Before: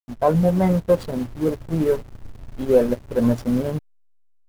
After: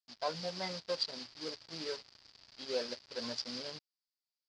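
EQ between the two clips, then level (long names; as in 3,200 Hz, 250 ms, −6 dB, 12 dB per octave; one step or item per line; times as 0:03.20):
resonant band-pass 4,800 Hz, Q 8.2
high-frequency loss of the air 110 metres
+18.0 dB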